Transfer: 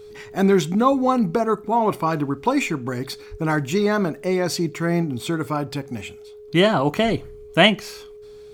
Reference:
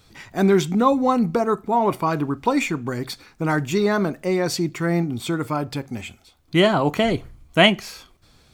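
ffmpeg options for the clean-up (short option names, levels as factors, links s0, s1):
-filter_complex "[0:a]bandreject=f=420:w=30,asplit=3[s0][s1][s2];[s0]afade=t=out:st=3.3:d=0.02[s3];[s1]highpass=f=140:w=0.5412,highpass=f=140:w=1.3066,afade=t=in:st=3.3:d=0.02,afade=t=out:st=3.42:d=0.02[s4];[s2]afade=t=in:st=3.42:d=0.02[s5];[s3][s4][s5]amix=inputs=3:normalize=0"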